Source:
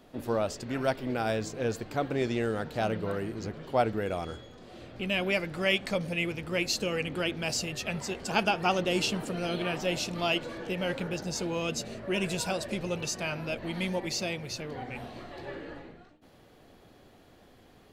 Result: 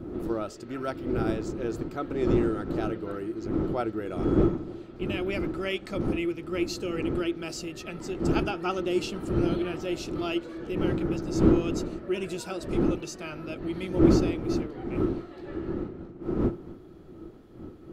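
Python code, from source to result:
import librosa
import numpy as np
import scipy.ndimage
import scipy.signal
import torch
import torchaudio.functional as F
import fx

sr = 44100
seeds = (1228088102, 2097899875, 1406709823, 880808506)

y = fx.dmg_wind(x, sr, seeds[0], corner_hz=260.0, level_db=-27.0)
y = fx.small_body(y, sr, hz=(340.0, 1300.0), ring_ms=45, db=14)
y = F.gain(torch.from_numpy(y), -7.0).numpy()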